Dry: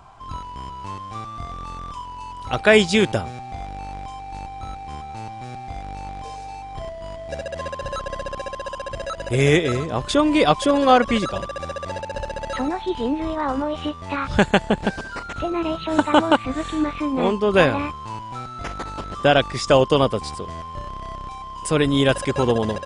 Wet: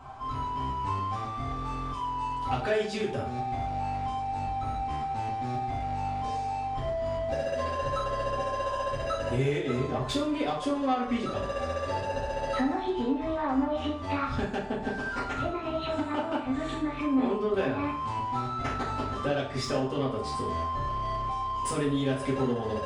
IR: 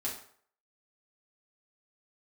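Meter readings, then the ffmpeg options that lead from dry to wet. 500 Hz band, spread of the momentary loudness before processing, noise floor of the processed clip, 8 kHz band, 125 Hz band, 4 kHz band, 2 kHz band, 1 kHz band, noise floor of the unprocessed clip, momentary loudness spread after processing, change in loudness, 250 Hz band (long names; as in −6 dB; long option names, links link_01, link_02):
−9.5 dB, 17 LU, −35 dBFS, −10.5 dB, −6.5 dB, −12.0 dB, −11.5 dB, −5.0 dB, −35 dBFS, 4 LU, −9.5 dB, −7.5 dB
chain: -filter_complex "[0:a]highshelf=frequency=5000:gain=-8.5,acompressor=threshold=-28dB:ratio=6,asoftclip=type=tanh:threshold=-23dB[link_01];[1:a]atrim=start_sample=2205[link_02];[link_01][link_02]afir=irnorm=-1:irlink=0"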